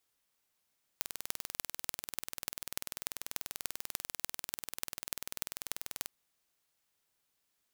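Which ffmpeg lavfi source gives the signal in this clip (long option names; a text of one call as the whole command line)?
ffmpeg -f lavfi -i "aevalsrc='0.531*eq(mod(n,2162),0)*(0.5+0.5*eq(mod(n,12972),0))':duration=5.08:sample_rate=44100" out.wav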